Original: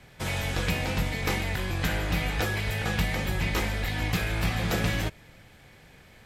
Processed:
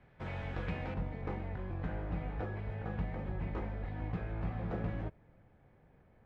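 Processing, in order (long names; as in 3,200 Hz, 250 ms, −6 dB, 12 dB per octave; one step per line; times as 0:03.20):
low-pass filter 1,700 Hz 12 dB per octave, from 0:00.94 1,000 Hz
level −9 dB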